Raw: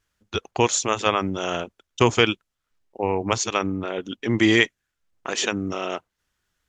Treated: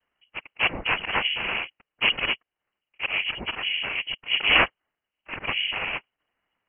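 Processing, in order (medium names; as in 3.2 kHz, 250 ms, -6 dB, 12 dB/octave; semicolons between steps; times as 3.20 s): slow attack 109 ms; noise-vocoded speech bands 4; frequency inversion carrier 3.1 kHz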